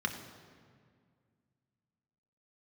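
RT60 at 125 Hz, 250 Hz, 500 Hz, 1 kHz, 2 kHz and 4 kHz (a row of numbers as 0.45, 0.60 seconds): 2.8, 2.7, 2.1, 1.9, 1.7, 1.3 seconds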